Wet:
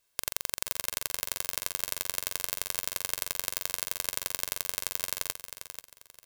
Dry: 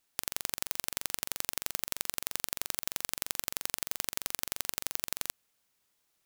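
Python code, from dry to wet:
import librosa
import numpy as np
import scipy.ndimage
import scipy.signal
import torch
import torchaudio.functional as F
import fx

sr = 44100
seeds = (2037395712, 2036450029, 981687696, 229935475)

p1 = x + 0.56 * np.pad(x, (int(1.9 * sr / 1000.0), 0))[:len(x)]
p2 = p1 + fx.echo_feedback(p1, sr, ms=487, feedback_pct=27, wet_db=-9.5, dry=0)
y = p2 * 10.0 ** (1.0 / 20.0)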